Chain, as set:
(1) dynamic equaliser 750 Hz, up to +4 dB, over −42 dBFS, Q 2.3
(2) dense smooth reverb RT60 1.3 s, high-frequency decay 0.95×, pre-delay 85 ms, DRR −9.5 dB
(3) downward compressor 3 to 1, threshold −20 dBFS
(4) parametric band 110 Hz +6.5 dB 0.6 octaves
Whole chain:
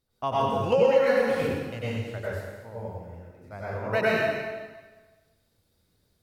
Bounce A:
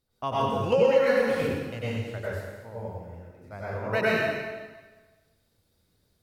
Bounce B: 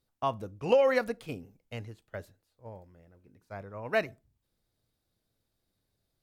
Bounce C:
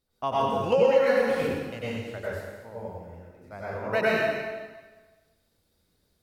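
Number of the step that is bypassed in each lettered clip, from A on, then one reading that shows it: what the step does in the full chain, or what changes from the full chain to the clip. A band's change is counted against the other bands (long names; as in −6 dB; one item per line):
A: 1, change in momentary loudness spread +1 LU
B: 2, change in momentary loudness spread +3 LU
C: 4, 125 Hz band −4.0 dB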